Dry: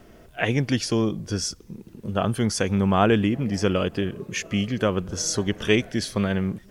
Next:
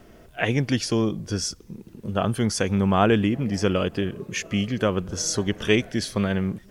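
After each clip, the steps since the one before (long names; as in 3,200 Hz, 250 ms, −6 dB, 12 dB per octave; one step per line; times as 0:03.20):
no processing that can be heard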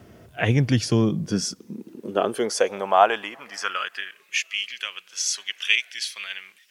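high-pass filter sweep 96 Hz → 2,500 Hz, 0:00.68–0:04.41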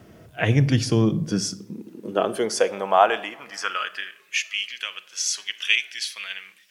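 convolution reverb RT60 0.70 s, pre-delay 6 ms, DRR 12.5 dB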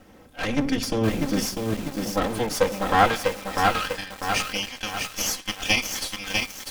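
lower of the sound and its delayed copy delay 3.8 ms
feedback echo at a low word length 647 ms, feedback 55%, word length 6 bits, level −3 dB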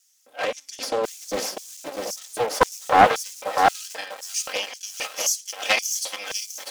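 auto-filter high-pass square 1.9 Hz 560–6,400 Hz
highs frequency-modulated by the lows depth 0.72 ms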